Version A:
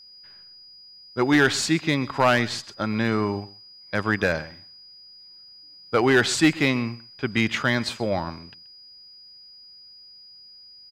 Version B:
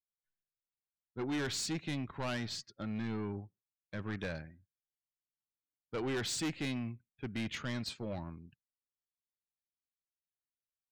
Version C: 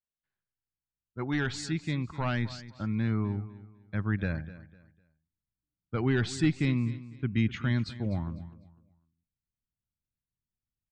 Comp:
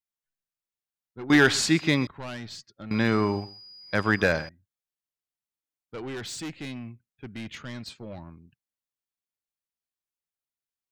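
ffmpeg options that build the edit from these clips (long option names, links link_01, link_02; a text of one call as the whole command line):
ffmpeg -i take0.wav -i take1.wav -filter_complex "[0:a]asplit=2[link_01][link_02];[1:a]asplit=3[link_03][link_04][link_05];[link_03]atrim=end=1.302[link_06];[link_01]atrim=start=1.298:end=2.072[link_07];[link_04]atrim=start=2.068:end=2.912[link_08];[link_02]atrim=start=2.908:end=4.492[link_09];[link_05]atrim=start=4.488[link_10];[link_06][link_07]acrossfade=duration=0.004:curve1=hsin:curve2=hsin[link_11];[link_11][link_08]acrossfade=duration=0.004:curve1=hsin:curve2=hsin[link_12];[link_12][link_09]acrossfade=duration=0.004:curve1=hsin:curve2=hsin[link_13];[link_13][link_10]acrossfade=duration=0.004:curve1=hsin:curve2=hsin" out.wav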